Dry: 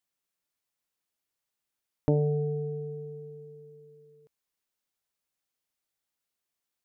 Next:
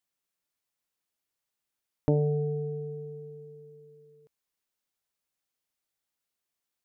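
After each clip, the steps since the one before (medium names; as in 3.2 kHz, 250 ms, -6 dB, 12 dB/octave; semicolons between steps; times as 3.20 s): no audible change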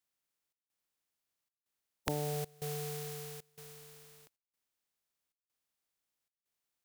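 spectral contrast reduction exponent 0.36; compression 2.5:1, threshold -34 dBFS, peak gain reduction 10 dB; trance gate "xxxxxx..xxx" 172 bpm -24 dB; trim -1.5 dB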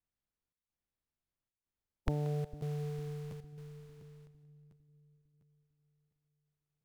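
RIAA curve playback; two-band feedback delay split 380 Hz, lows 453 ms, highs 181 ms, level -15 dB; crackling interface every 0.70 s, samples 512, repeat, from 0.50 s; trim -5.5 dB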